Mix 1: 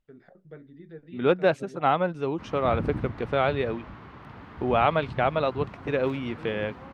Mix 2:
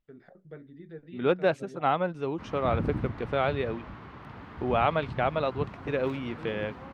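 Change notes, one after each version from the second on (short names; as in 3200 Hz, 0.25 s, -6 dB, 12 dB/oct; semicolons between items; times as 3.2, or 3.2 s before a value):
second voice -3.0 dB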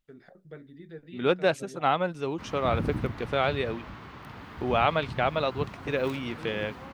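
master: remove LPF 1900 Hz 6 dB/oct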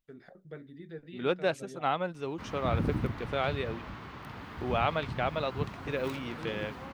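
second voice -5.0 dB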